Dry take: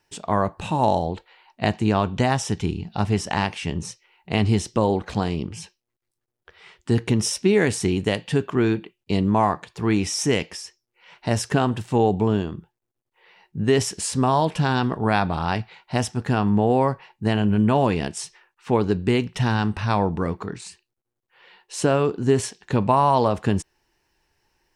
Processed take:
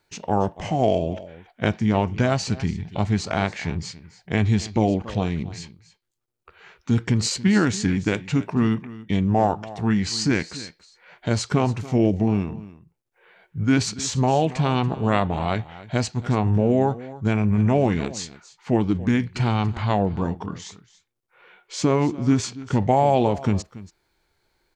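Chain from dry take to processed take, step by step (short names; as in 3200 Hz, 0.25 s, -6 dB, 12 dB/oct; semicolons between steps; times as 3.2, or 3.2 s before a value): echo 0.282 s -17.5 dB; formant shift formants -4 st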